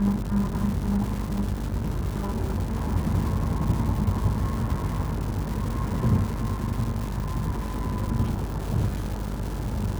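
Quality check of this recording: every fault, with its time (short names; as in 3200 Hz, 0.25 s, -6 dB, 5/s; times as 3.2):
buzz 50 Hz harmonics 35 -31 dBFS
crackle 430/s -31 dBFS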